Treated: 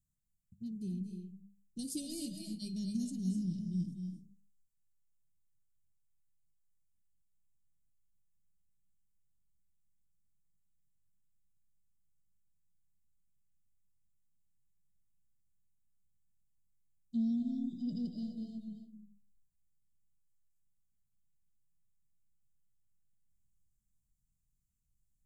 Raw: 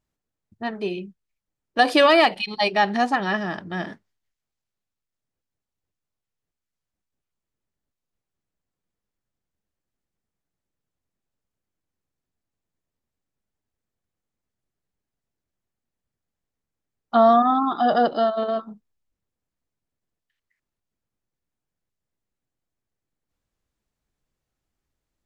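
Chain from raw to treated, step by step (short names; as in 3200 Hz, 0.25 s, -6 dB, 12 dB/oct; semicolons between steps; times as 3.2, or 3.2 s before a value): elliptic band-stop 180–7300 Hz, stop band 80 dB; notches 50/100/150/200 Hz; reverb RT60 0.40 s, pre-delay 0.205 s, DRR 4 dB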